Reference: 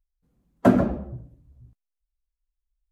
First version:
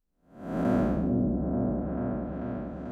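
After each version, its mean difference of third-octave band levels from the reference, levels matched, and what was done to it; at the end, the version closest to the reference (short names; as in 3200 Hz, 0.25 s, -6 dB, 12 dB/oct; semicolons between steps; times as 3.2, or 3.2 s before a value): 8.5 dB: time blur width 0.337 s; on a send: repeats that get brighter 0.441 s, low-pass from 400 Hz, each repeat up 1 oct, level 0 dB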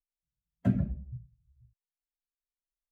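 6.5 dB: band shelf 560 Hz -14.5 dB 3 oct; spectral expander 1.5:1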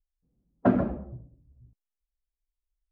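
1.0 dB: LPF 2600 Hz 12 dB/oct; low-pass opened by the level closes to 550 Hz, open at -15 dBFS; gain -5 dB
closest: third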